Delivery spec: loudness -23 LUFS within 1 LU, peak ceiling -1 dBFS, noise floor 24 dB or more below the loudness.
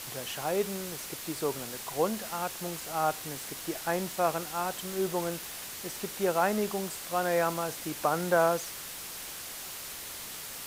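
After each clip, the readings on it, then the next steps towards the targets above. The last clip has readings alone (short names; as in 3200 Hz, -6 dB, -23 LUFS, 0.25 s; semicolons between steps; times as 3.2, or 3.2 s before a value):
noise floor -41 dBFS; noise floor target -56 dBFS; loudness -32.0 LUFS; peak -12.0 dBFS; loudness target -23.0 LUFS
-> denoiser 15 dB, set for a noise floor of -41 dBFS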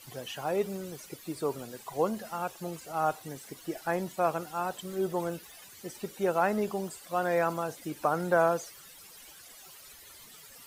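noise floor -52 dBFS; noise floor target -56 dBFS
-> denoiser 6 dB, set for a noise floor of -52 dBFS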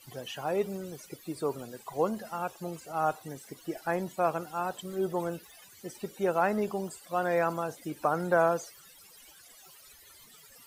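noise floor -55 dBFS; noise floor target -56 dBFS
-> denoiser 6 dB, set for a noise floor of -55 dBFS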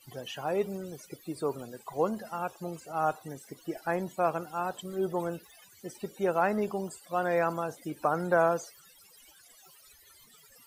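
noise floor -58 dBFS; loudness -32.0 LUFS; peak -12.0 dBFS; loudness target -23.0 LUFS
-> gain +9 dB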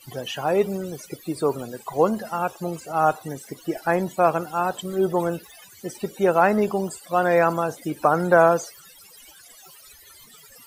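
loudness -23.0 LUFS; peak -3.0 dBFS; noise floor -49 dBFS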